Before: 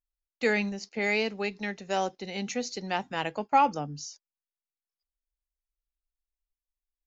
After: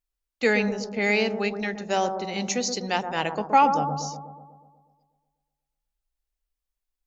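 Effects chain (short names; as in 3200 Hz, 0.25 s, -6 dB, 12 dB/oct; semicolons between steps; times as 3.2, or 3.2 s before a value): 2.4–3.03 tone controls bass -1 dB, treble +7 dB; analogue delay 0.122 s, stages 1024, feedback 60%, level -7 dB; gain +4 dB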